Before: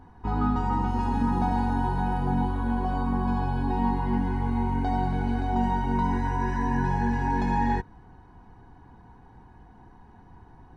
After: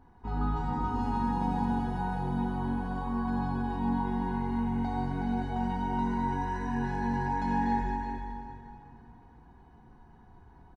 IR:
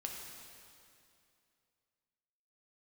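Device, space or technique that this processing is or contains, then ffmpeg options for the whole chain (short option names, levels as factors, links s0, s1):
cave: -filter_complex "[0:a]aecho=1:1:372:0.398[s0];[1:a]atrim=start_sample=2205[s1];[s0][s1]afir=irnorm=-1:irlink=0,volume=0.596"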